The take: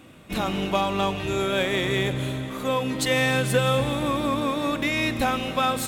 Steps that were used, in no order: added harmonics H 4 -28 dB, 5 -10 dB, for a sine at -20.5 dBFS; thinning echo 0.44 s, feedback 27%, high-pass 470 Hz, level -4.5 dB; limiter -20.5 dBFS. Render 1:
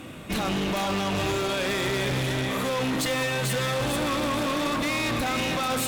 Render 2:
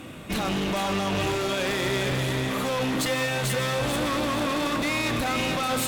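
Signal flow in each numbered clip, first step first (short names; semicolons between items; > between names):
limiter > thinning echo > added harmonics; limiter > added harmonics > thinning echo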